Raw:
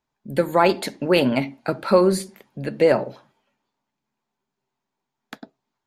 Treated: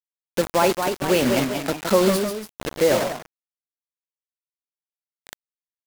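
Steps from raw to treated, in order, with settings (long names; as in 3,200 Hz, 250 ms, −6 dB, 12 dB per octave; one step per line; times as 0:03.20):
linear delta modulator 64 kbit/s, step −23.5 dBFS
high-shelf EQ 2,000 Hz −4 dB
bit reduction 4 bits
delay with pitch and tempo change per echo 260 ms, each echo +1 semitone, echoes 2, each echo −6 dB
level −2 dB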